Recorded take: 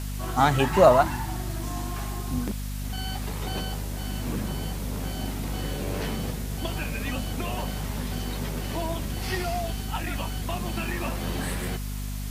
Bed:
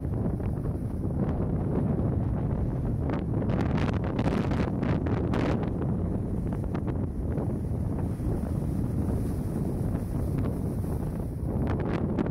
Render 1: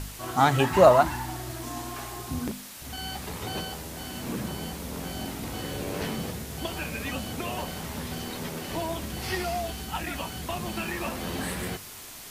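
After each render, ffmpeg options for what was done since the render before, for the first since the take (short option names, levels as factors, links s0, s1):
-af "bandreject=f=50:t=h:w=4,bandreject=f=100:t=h:w=4,bandreject=f=150:t=h:w=4,bandreject=f=200:t=h:w=4,bandreject=f=250:t=h:w=4"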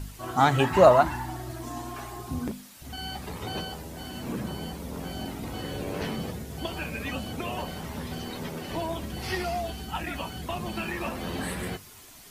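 -af "afftdn=nr=8:nf=-43"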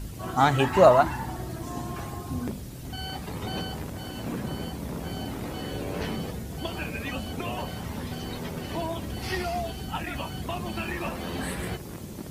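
-filter_complex "[1:a]volume=0.266[s0];[0:a][s0]amix=inputs=2:normalize=0"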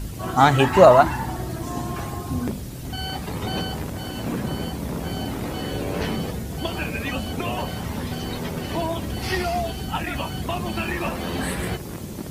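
-af "volume=1.88,alimiter=limit=0.891:level=0:latency=1"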